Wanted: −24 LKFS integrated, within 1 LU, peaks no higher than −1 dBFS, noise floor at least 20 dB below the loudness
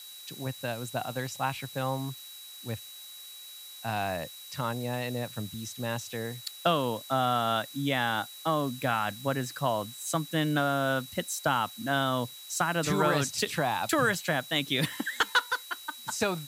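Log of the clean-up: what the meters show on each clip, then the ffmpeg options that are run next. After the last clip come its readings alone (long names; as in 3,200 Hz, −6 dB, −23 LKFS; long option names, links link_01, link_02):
interfering tone 3,900 Hz; level of the tone −46 dBFS; background noise floor −46 dBFS; target noise floor −50 dBFS; integrated loudness −30.0 LKFS; sample peak −12.5 dBFS; target loudness −24.0 LKFS
→ -af "bandreject=frequency=3900:width=30"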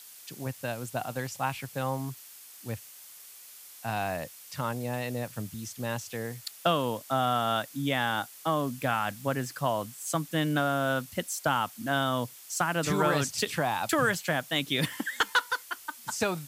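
interfering tone none found; background noise floor −49 dBFS; target noise floor −51 dBFS
→ -af "afftdn=noise_reduction=6:noise_floor=-49"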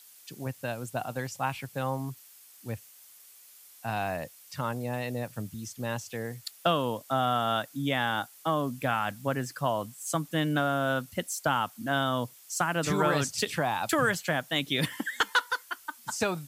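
background noise floor −54 dBFS; integrated loudness −30.5 LKFS; sample peak −13.0 dBFS; target loudness −24.0 LKFS
→ -af "volume=6.5dB"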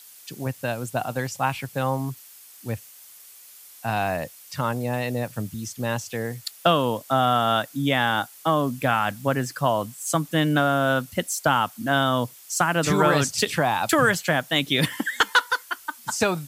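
integrated loudness −24.0 LKFS; sample peak −6.5 dBFS; background noise floor −48 dBFS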